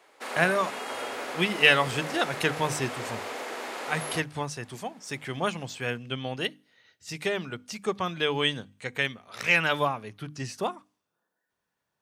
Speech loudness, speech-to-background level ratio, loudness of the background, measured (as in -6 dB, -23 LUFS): -28.0 LUFS, 7.5 dB, -35.5 LUFS